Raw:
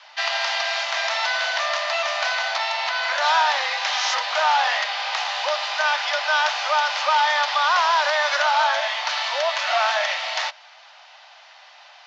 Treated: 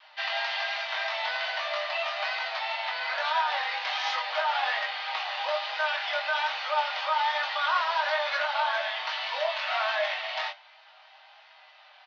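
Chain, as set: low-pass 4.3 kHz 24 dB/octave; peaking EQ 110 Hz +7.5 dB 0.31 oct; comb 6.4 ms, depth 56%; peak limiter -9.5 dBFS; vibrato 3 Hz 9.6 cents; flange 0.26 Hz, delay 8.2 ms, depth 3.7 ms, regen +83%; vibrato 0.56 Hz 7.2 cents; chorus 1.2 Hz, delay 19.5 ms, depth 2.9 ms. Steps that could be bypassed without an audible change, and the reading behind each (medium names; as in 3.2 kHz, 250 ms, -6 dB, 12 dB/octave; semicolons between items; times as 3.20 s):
peaking EQ 110 Hz: input has nothing below 480 Hz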